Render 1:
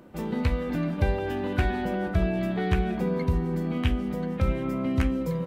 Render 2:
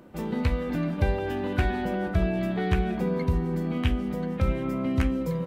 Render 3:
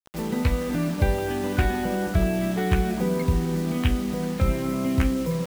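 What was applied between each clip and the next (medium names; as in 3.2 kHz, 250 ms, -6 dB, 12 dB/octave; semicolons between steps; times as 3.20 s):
no audible change
bit crusher 7-bit; trim +2.5 dB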